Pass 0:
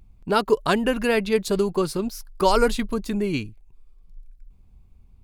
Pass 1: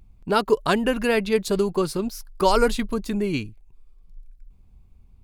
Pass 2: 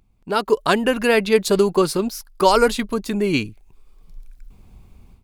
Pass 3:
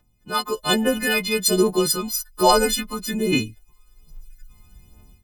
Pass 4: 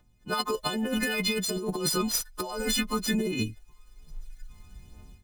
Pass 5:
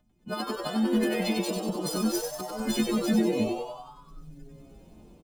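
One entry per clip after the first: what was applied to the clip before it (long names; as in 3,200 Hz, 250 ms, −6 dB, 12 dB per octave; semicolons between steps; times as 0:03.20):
no processing that can be heard
automatic gain control gain up to 16 dB; low-shelf EQ 130 Hz −11 dB; level −1 dB
every partial snapped to a pitch grid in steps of 3 semitones; phase shifter 1.2 Hz, delay 1 ms, feedback 55%; level −6 dB
running median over 3 samples; compressor whose output falls as the input rises −25 dBFS, ratio −1; level −3.5 dB
hollow resonant body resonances 220/640/3,100 Hz, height 12 dB; on a send: echo with shifted repeats 95 ms, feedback 59%, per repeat +130 Hz, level −4.5 dB; on the sum: level −7.5 dB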